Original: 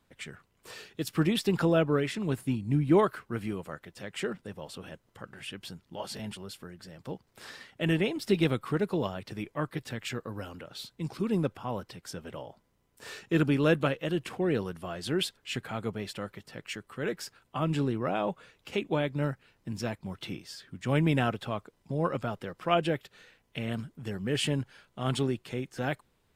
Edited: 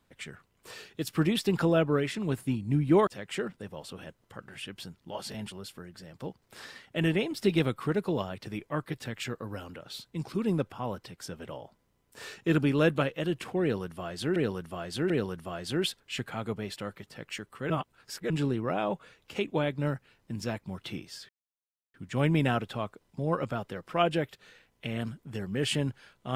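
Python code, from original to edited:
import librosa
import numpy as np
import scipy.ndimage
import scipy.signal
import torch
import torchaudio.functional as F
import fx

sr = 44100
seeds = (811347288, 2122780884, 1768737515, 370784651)

y = fx.edit(x, sr, fx.cut(start_s=3.07, length_s=0.85),
    fx.repeat(start_s=14.47, length_s=0.74, count=3),
    fx.reverse_span(start_s=17.07, length_s=0.6),
    fx.insert_silence(at_s=20.66, length_s=0.65), tone=tone)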